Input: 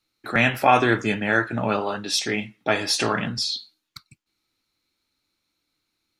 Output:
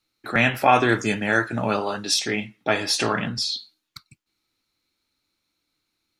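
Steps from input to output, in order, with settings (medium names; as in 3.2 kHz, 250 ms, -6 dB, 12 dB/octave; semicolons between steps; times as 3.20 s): 0.89–2.14 s: high-order bell 7.6 kHz +8.5 dB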